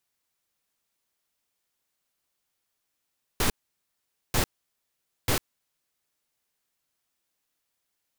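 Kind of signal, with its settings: noise bursts pink, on 0.10 s, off 0.84 s, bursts 3, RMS -23.5 dBFS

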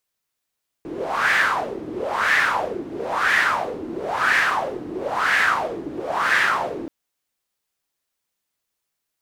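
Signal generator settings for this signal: wind-like swept noise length 6.03 s, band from 310 Hz, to 1800 Hz, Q 5.1, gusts 6, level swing 13.5 dB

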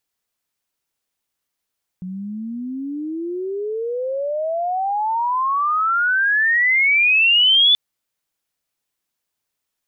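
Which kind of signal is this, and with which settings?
chirp logarithmic 180 Hz -> 3500 Hz -26.5 dBFS -> -10 dBFS 5.73 s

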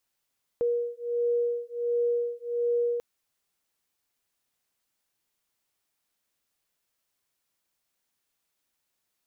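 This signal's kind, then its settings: beating tones 476 Hz, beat 1.4 Hz, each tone -28 dBFS 2.39 s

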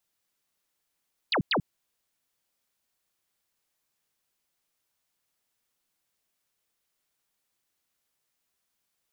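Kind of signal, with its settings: burst of laser zaps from 4900 Hz, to 120 Hz, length 0.09 s sine, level -22 dB, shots 2, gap 0.10 s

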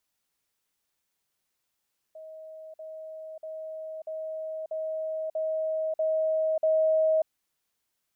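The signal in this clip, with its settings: level ladder 633 Hz -41 dBFS, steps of 3 dB, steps 8, 0.59 s 0.05 s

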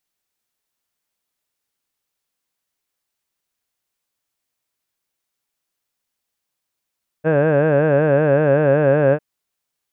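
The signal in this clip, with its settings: formant vowel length 1.95 s, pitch 151 Hz, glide -1 st, vibrato depth 1.15 st, F1 540 Hz, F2 1600 Hz, F3 2600 Hz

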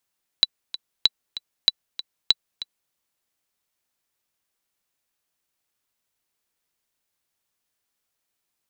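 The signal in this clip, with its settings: metronome 192 bpm, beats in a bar 2, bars 4, 3960 Hz, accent 15 dB -2 dBFS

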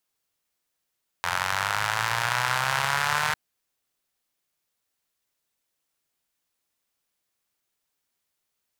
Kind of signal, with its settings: four-cylinder engine model, changing speed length 2.10 s, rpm 2600, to 4600, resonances 120/980/1400 Hz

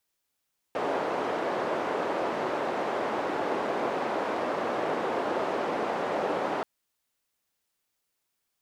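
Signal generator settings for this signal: noise band 380–670 Hz, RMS -29.5 dBFS 5.88 s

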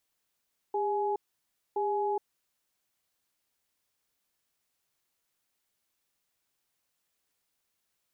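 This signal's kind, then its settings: cadence 404 Hz, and 840 Hz, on 0.42 s, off 0.60 s, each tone -29.5 dBFS 1.91 s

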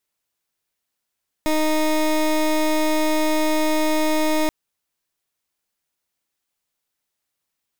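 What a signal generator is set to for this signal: pulse 310 Hz, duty 21% -19 dBFS 3.03 s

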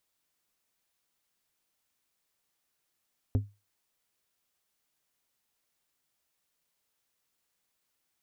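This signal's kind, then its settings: glass hit plate, lowest mode 102 Hz, decay 0.26 s, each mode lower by 7 dB, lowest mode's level -19.5 dB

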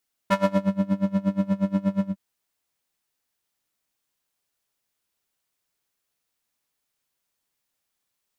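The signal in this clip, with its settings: synth patch with tremolo G3, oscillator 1 square, oscillator 2 saw, interval +7 st, oscillator 2 level -14 dB, noise -10 dB, filter bandpass, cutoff 130 Hz, Q 0.93, filter envelope 3 oct, filter decay 0.42 s, attack 7.8 ms, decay 0.43 s, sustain -8 dB, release 0.11 s, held 1.75 s, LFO 8.4 Hz, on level 23.5 dB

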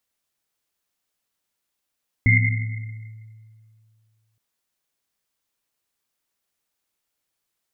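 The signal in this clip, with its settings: Risset drum length 2.12 s, pitch 110 Hz, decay 2.36 s, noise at 2100 Hz, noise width 120 Hz, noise 40%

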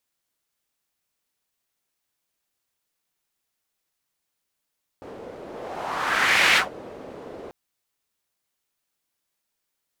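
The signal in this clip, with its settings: whoosh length 2.49 s, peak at 1.54, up 1.23 s, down 0.15 s, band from 460 Hz, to 2200 Hz, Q 1.9, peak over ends 22 dB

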